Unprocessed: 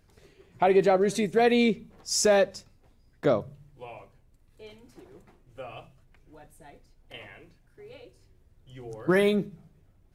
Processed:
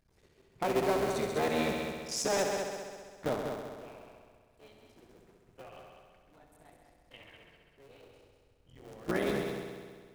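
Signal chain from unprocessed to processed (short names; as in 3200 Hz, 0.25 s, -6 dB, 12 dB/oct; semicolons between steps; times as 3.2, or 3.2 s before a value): cycle switcher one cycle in 3, muted; multi-head echo 66 ms, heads all three, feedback 58%, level -9 dB; gain -8.5 dB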